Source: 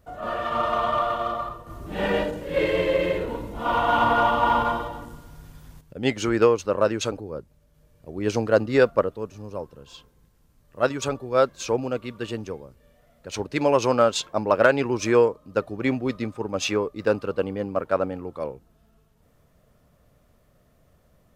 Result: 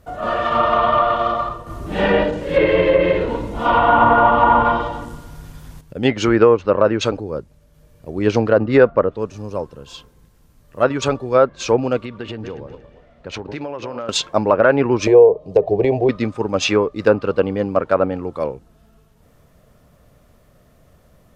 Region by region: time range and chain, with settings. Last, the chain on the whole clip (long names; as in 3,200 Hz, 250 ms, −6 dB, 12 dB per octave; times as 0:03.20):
0:12.05–0:14.09: feedback delay that plays each chunk backwards 117 ms, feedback 48%, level −12 dB + low-pass filter 3,400 Hz + downward compressor 10 to 1, threshold −32 dBFS
0:15.07–0:16.09: hollow resonant body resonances 210/420/670 Hz, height 15 dB, ringing for 25 ms + downward compressor 5 to 1, threshold −13 dBFS + phaser with its sweep stopped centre 560 Hz, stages 4
whole clip: treble cut that deepens with the level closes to 1,800 Hz, closed at −16.5 dBFS; boost into a limiter +9 dB; level −1 dB